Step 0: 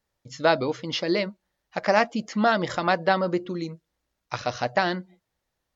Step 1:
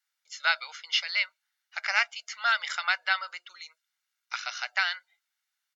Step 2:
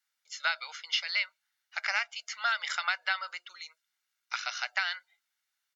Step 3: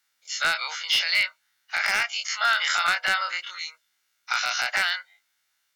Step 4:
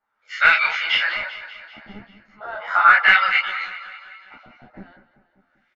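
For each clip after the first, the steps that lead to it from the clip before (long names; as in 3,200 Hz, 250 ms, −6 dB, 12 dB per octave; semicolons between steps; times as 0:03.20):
high-pass filter 1,300 Hz 24 dB per octave; dynamic equaliser 2,400 Hz, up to +5 dB, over −42 dBFS, Q 2.4; comb filter 1.4 ms, depth 48%
downward compressor, threshold −25 dBFS, peak gain reduction 7.5 dB
every bin's largest magnitude spread in time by 60 ms; in parallel at +0.5 dB: brickwall limiter −21.5 dBFS, peak gain reduction 10.5 dB; on the sum: wave folding −13.5 dBFS
auto-filter low-pass sine 0.38 Hz 220–2,500 Hz; repeating echo 195 ms, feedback 60%, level −14 dB; string-ensemble chorus; level +8.5 dB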